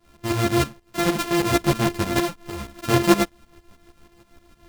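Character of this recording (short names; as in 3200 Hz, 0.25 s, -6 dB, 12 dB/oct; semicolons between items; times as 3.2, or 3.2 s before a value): a buzz of ramps at a fixed pitch in blocks of 128 samples; tremolo saw up 6.4 Hz, depth 80%; a shimmering, thickened sound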